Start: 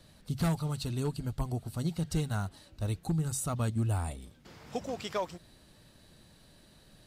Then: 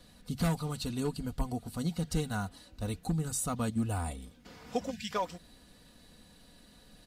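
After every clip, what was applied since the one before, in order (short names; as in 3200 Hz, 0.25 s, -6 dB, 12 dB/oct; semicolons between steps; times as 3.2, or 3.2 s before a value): spectral gain 4.91–5.11, 240–1500 Hz -26 dB; comb 4.1 ms, depth 54%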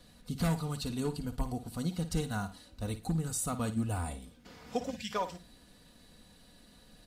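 flutter echo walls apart 9.4 m, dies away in 0.27 s; gain -1 dB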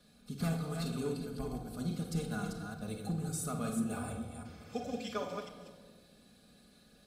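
reverse delay 0.211 s, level -5 dB; notch comb 960 Hz; reverb RT60 1.6 s, pre-delay 5 ms, DRR 3 dB; gain -5 dB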